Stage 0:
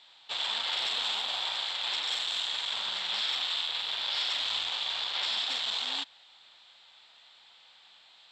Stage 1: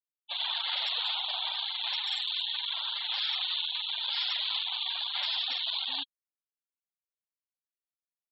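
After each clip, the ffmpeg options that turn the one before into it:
-af "afftfilt=real='re*gte(hypot(re,im),0.0224)':imag='im*gte(hypot(re,im),0.0224)':win_size=1024:overlap=0.75"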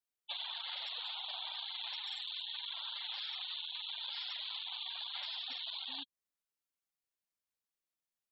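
-filter_complex "[0:a]acrossover=split=270[a][b];[b]acompressor=threshold=-41dB:ratio=6[c];[a][c]amix=inputs=2:normalize=0,volume=1dB"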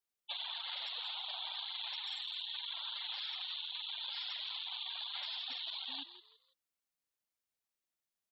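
-filter_complex "[0:a]asplit=4[a][b][c][d];[b]adelay=166,afreqshift=83,volume=-13dB[e];[c]adelay=332,afreqshift=166,volume=-23.2dB[f];[d]adelay=498,afreqshift=249,volume=-33.3dB[g];[a][e][f][g]amix=inputs=4:normalize=0"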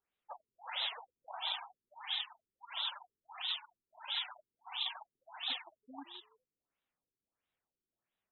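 -af "afftfilt=real='re*lt(b*sr/1024,430*pow(4100/430,0.5+0.5*sin(2*PI*1.5*pts/sr)))':imag='im*lt(b*sr/1024,430*pow(4100/430,0.5+0.5*sin(2*PI*1.5*pts/sr)))':win_size=1024:overlap=0.75,volume=7dB"

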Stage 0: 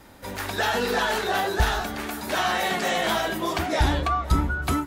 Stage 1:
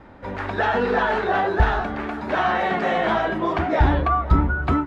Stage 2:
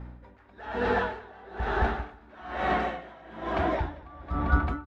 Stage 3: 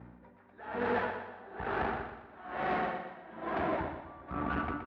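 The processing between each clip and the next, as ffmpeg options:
-af "lowpass=1.8k,volume=4.5dB"
-filter_complex "[0:a]aeval=exprs='val(0)+0.02*(sin(2*PI*60*n/s)+sin(2*PI*2*60*n/s)/2+sin(2*PI*3*60*n/s)/3+sin(2*PI*4*60*n/s)/4+sin(2*PI*5*60*n/s)/5)':c=same,asplit=2[a][b];[b]aecho=0:1:220|396|536.8|649.4|739.6:0.631|0.398|0.251|0.158|0.1[c];[a][c]amix=inputs=2:normalize=0,aeval=exprs='val(0)*pow(10,-25*(0.5-0.5*cos(2*PI*1.1*n/s))/20)':c=same,volume=-5.5dB"
-filter_complex "[0:a]aeval=exprs='(tanh(20*val(0)+0.75)-tanh(0.75))/20':c=same,highpass=120,lowpass=2.5k,asplit=2[a][b];[b]aecho=0:1:121|242|363|484|605:0.376|0.165|0.0728|0.032|0.0141[c];[a][c]amix=inputs=2:normalize=0"

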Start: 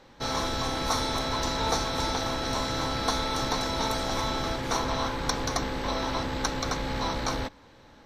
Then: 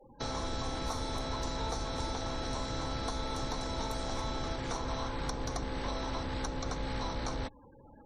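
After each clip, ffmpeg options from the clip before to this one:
-filter_complex "[0:a]afftfilt=real='re*gte(hypot(re,im),0.00501)':imag='im*gte(hypot(re,im),0.00501)':win_size=1024:overlap=0.75,equalizer=f=8.4k:t=o:w=0.97:g=4.5,acrossover=split=88|960[a][b][c];[a]acompressor=threshold=-35dB:ratio=4[d];[b]acompressor=threshold=-38dB:ratio=4[e];[c]acompressor=threshold=-43dB:ratio=4[f];[d][e][f]amix=inputs=3:normalize=0"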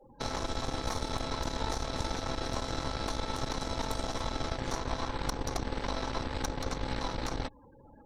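-af "aeval=exprs='0.0944*(cos(1*acos(clip(val(0)/0.0944,-1,1)))-cos(1*PI/2))+0.0266*(cos(4*acos(clip(val(0)/0.0944,-1,1)))-cos(4*PI/2))':c=same"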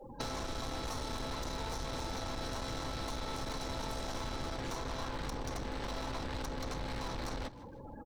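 -filter_complex "[0:a]asoftclip=type=hard:threshold=-33dB,acompressor=threshold=-43dB:ratio=10,asplit=4[a][b][c][d];[b]adelay=156,afreqshift=78,volume=-17.5dB[e];[c]adelay=312,afreqshift=156,volume=-26.9dB[f];[d]adelay=468,afreqshift=234,volume=-36.2dB[g];[a][e][f][g]amix=inputs=4:normalize=0,volume=7.5dB"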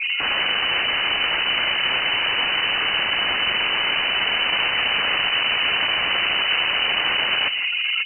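-af "aeval=exprs='0.0531*sin(PI/2*5.62*val(0)/0.0531)':c=same,lowpass=f=2.6k:t=q:w=0.5098,lowpass=f=2.6k:t=q:w=0.6013,lowpass=f=2.6k:t=q:w=0.9,lowpass=f=2.6k:t=q:w=2.563,afreqshift=-3000,volume=8dB"

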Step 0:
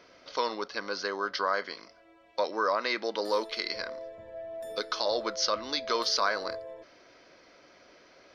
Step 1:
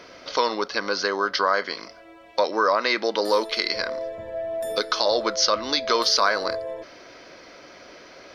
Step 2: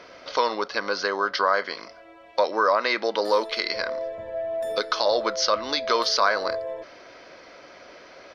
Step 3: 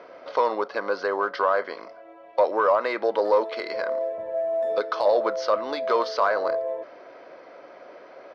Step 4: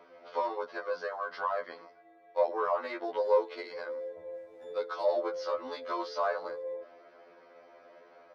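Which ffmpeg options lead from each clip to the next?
-filter_complex "[0:a]equalizer=f=11k:w=1.5:g=5,asplit=2[a][b];[b]acompressor=threshold=-36dB:ratio=6,volume=0.5dB[c];[a][c]amix=inputs=2:normalize=0,volume=5dB"
-af "firequalizer=gain_entry='entry(320,0);entry(560,4);entry(11000,-6)':delay=0.05:min_phase=1,volume=-3.5dB"
-af "acrusher=bits=7:mode=log:mix=0:aa=0.000001,asoftclip=type=tanh:threshold=-12dB,bandpass=f=590:t=q:w=0.8:csg=0,volume=3.5dB"
-af "afftfilt=real='re*2*eq(mod(b,4),0)':imag='im*2*eq(mod(b,4),0)':win_size=2048:overlap=0.75,volume=-7.5dB"

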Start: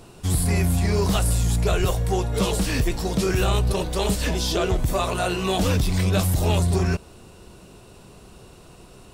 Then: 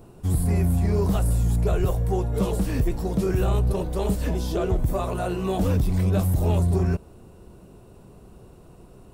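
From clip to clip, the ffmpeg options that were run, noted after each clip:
-af "equalizer=f=4.3k:w=0.32:g=-14"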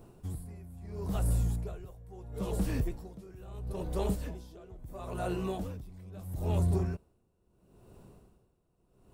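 -af "acrusher=bits=11:mix=0:aa=0.000001,aeval=exprs='val(0)*pow(10,-21*(0.5-0.5*cos(2*PI*0.75*n/s))/20)':c=same,volume=-6dB"

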